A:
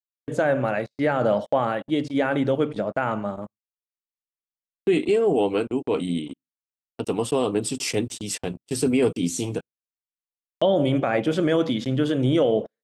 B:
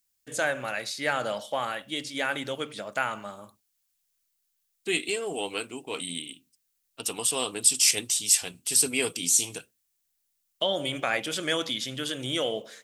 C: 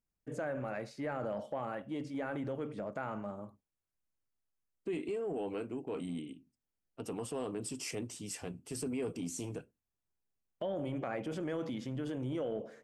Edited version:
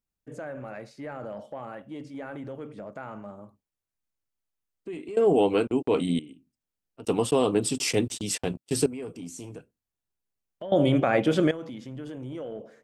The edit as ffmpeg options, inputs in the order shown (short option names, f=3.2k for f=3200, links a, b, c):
-filter_complex "[0:a]asplit=3[a][b][c];[2:a]asplit=4[d][e][f][g];[d]atrim=end=5.172[h];[a]atrim=start=5.168:end=6.192[i];[e]atrim=start=6.188:end=7.052[j];[b]atrim=start=7.048:end=8.862[k];[f]atrim=start=8.858:end=10.722[l];[c]atrim=start=10.718:end=11.512[m];[g]atrim=start=11.508[n];[h][i]acrossfade=d=0.004:c1=hsin:c2=hsin[o];[o][j]acrossfade=d=0.004:c1=hsin:c2=hsin[p];[p][k]acrossfade=d=0.004:c1=hsin:c2=hsin[q];[q][l]acrossfade=d=0.004:c1=hsin:c2=hsin[r];[r][m]acrossfade=d=0.004:c1=hsin:c2=hsin[s];[s][n]acrossfade=d=0.004:c1=hsin:c2=hsin"